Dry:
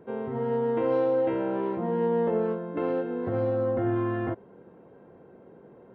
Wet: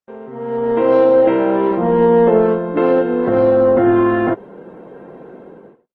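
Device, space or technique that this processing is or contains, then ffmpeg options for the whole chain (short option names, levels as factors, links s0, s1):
video call: -af "highpass=f=130:w=0.5412,highpass=f=130:w=1.3066,highpass=f=140:p=1,dynaudnorm=f=190:g=7:m=6.68,agate=range=0.00316:threshold=0.00794:ratio=16:detection=peak" -ar 48000 -c:a libopus -b:a 16k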